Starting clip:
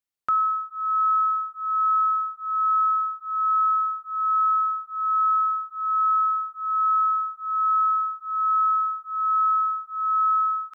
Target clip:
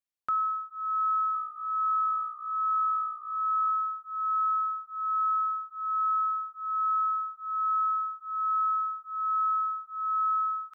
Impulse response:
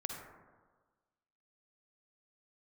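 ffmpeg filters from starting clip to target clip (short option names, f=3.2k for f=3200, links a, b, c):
-filter_complex "[0:a]asettb=1/sr,asplit=3[a][b][c];[a]atrim=end=1.124[d];[b]atrim=start=1.12:end=3.7,asetpts=PTS-STARTPTS,afade=t=in:d=0.004:c=qsin,afade=t=out:st=2.576:d=0.004:c=qsin,asplit=4[e][f][g][h];[f]adelay=224,afreqshift=-58,volume=-17dB[i];[g]adelay=448,afreqshift=-116,volume=-26.4dB[j];[h]adelay=672,afreqshift=-174,volume=-35.7dB[k];[e][i][j][k]amix=inputs=4:normalize=0,atrim=end_sample=113778[l];[c]atrim=start=3.696[m];[d][l]acrossfade=d=0.004:c1=hsin:c2=qsin[n];[n][m]acrossfade=d=0.004:c1=qsin:c2=hsin,volume=-6dB"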